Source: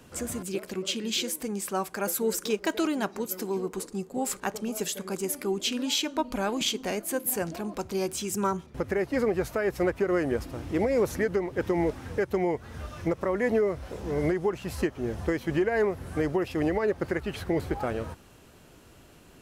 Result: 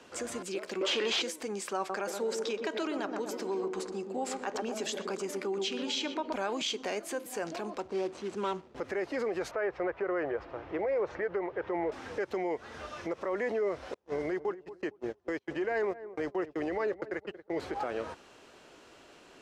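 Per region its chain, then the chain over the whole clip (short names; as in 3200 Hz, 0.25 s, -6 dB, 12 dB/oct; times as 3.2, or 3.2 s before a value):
0.81–1.22 HPF 290 Hz + overdrive pedal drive 24 dB, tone 1800 Hz, clips at -15 dBFS
1.77–6.33 high shelf 9200 Hz -8 dB + darkening echo 0.123 s, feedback 64%, low-pass 900 Hz, level -6 dB
7.8–8.76 median filter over 25 samples + LPF 12000 Hz 24 dB/oct
9.51–11.92 LPF 1900 Hz + bell 250 Hz -14 dB 0.5 oct
13.94–17.58 gate -30 dBFS, range -39 dB + bell 86 Hz +6 dB 1.5 oct + darkening echo 0.229 s, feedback 25%, low-pass 970 Hz, level -19.5 dB
whole clip: limiter -24.5 dBFS; three-band isolator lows -18 dB, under 290 Hz, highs -22 dB, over 7500 Hz; gain +2 dB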